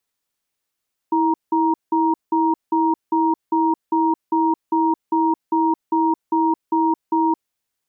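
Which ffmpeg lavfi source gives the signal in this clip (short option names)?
-f lavfi -i "aevalsrc='0.133*(sin(2*PI*325*t)+sin(2*PI*940*t))*clip(min(mod(t,0.4),0.22-mod(t,0.4))/0.005,0,1)':d=6.32:s=44100"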